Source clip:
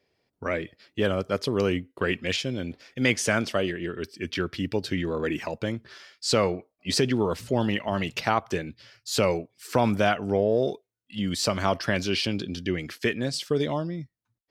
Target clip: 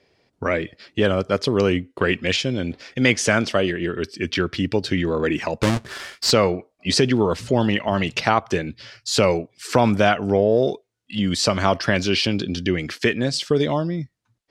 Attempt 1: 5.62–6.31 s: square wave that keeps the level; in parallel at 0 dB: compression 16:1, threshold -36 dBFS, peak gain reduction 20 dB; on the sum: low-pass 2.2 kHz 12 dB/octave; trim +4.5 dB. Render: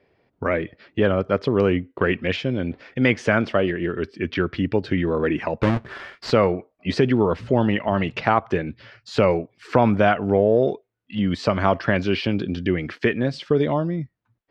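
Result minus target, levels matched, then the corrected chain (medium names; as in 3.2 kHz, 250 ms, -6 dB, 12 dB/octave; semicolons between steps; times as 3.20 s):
8 kHz band -18.0 dB
5.62–6.31 s: square wave that keeps the level; in parallel at 0 dB: compression 16:1, threshold -36 dBFS, peak gain reduction 20 dB; on the sum: low-pass 8.4 kHz 12 dB/octave; trim +4.5 dB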